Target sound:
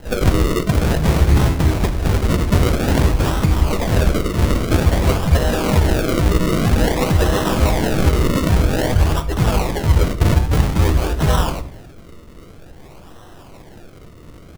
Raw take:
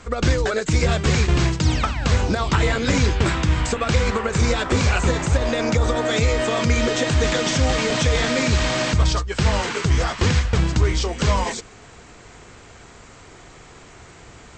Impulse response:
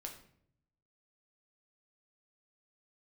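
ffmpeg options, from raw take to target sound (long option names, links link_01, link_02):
-filter_complex "[0:a]asplit=3[link_01][link_02][link_03];[link_02]asetrate=35002,aresample=44100,atempo=1.25992,volume=-2dB[link_04];[link_03]asetrate=55563,aresample=44100,atempo=0.793701,volume=-4dB[link_05];[link_01][link_04][link_05]amix=inputs=3:normalize=0,acrusher=samples=37:mix=1:aa=0.000001:lfo=1:lforange=37:lforate=0.51,asplit=2[link_06][link_07];[1:a]atrim=start_sample=2205,lowshelf=frequency=150:gain=6[link_08];[link_07][link_08]afir=irnorm=-1:irlink=0,volume=1.5dB[link_09];[link_06][link_09]amix=inputs=2:normalize=0,volume=-5.5dB"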